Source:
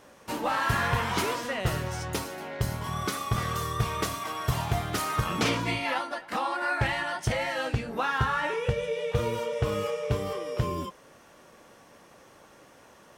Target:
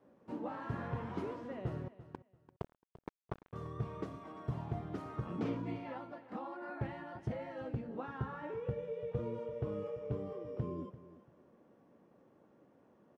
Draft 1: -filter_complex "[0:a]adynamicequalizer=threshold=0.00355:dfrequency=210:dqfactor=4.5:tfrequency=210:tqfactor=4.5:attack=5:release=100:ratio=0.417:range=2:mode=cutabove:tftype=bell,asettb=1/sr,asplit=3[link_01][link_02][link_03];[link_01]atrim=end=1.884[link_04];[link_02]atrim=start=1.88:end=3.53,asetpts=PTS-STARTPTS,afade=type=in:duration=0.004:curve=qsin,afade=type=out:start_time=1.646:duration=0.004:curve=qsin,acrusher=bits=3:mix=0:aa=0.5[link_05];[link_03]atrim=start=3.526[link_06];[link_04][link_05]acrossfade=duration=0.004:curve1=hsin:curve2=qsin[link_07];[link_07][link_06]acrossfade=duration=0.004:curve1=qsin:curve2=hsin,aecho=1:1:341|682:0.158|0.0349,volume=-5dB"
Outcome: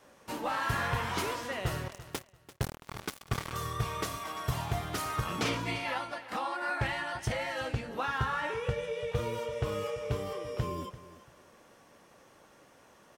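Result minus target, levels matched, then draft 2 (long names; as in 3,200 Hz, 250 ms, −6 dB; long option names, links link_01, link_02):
250 Hz band −6.5 dB
-filter_complex "[0:a]adynamicequalizer=threshold=0.00355:dfrequency=210:dqfactor=4.5:tfrequency=210:tqfactor=4.5:attack=5:release=100:ratio=0.417:range=2:mode=cutabove:tftype=bell,bandpass=frequency=240:width_type=q:width=1:csg=0,asettb=1/sr,asplit=3[link_01][link_02][link_03];[link_01]atrim=end=1.884[link_04];[link_02]atrim=start=1.88:end=3.53,asetpts=PTS-STARTPTS,afade=type=in:duration=0.004:curve=qsin,afade=type=out:start_time=1.646:duration=0.004:curve=qsin,acrusher=bits=3:mix=0:aa=0.5[link_05];[link_03]atrim=start=3.526[link_06];[link_04][link_05]acrossfade=duration=0.004:curve1=hsin:curve2=qsin[link_07];[link_07][link_06]acrossfade=duration=0.004:curve1=qsin:curve2=hsin,aecho=1:1:341|682:0.158|0.0349,volume=-5dB"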